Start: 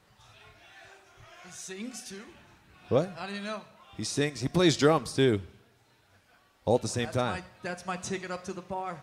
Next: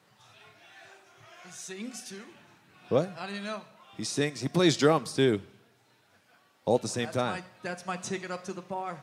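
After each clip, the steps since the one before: HPF 120 Hz 24 dB/oct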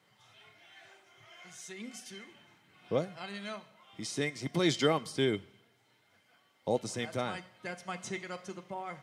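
small resonant body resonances 2100/3100 Hz, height 17 dB, ringing for 65 ms; gain -5.5 dB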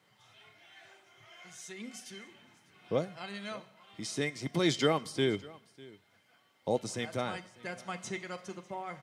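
echo 0.599 s -22 dB

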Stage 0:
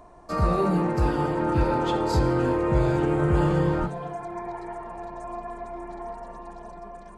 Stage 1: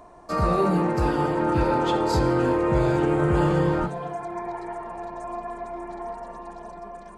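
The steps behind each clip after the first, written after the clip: low shelf 120 Hz -6.5 dB; gain +2.5 dB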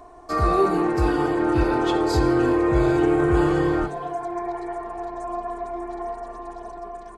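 comb 2.7 ms, depth 68%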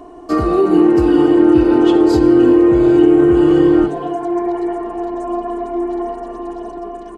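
compressor, threshold -20 dBFS, peak gain reduction 6.5 dB; small resonant body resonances 290/2900 Hz, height 14 dB, ringing for 20 ms; gain +3 dB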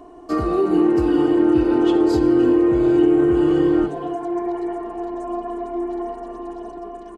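echo 0.29 s -23 dB; gain -5.5 dB

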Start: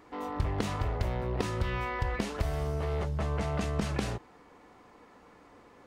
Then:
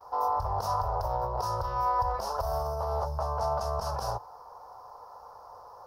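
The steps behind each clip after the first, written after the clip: limiter -26 dBFS, peak gain reduction 9 dB; EQ curve 110 Hz 0 dB, 270 Hz -22 dB, 530 Hz +7 dB, 940 Hz +15 dB, 1400 Hz +3 dB, 2100 Hz -21 dB, 3600 Hz -10 dB, 5300 Hz +12 dB, 7500 Hz -7 dB, 12000 Hz +12 dB; gate -52 dBFS, range -23 dB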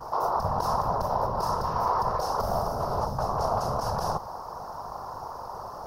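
per-bin compression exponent 0.6; hum 50 Hz, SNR 23 dB; whisperiser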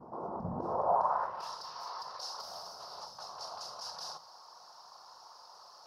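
band-pass sweep 240 Hz -> 4300 Hz, 0.53–1.58; reverb RT60 0.20 s, pre-delay 6 ms, DRR 11.5 dB; gain +2.5 dB

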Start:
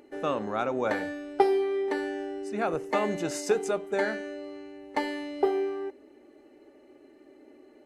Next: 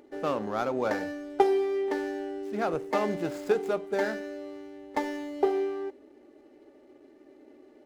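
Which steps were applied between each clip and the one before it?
median filter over 15 samples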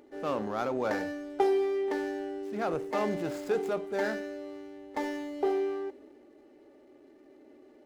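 transient shaper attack -4 dB, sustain +3 dB; gain -1.5 dB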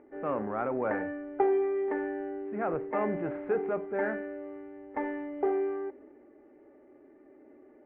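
steep low-pass 2200 Hz 36 dB/oct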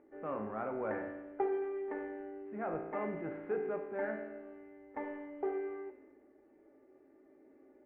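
resonator 54 Hz, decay 1.1 s, harmonics all, mix 80%; gain +3 dB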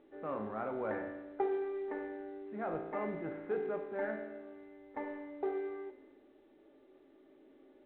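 µ-law 64 kbps 8000 Hz

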